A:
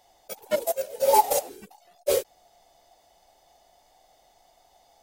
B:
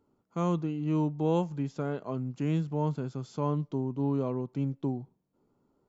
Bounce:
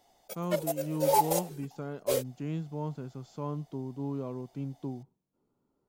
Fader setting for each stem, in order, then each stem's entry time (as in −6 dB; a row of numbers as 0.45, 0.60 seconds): −5.5, −6.0 decibels; 0.00, 0.00 seconds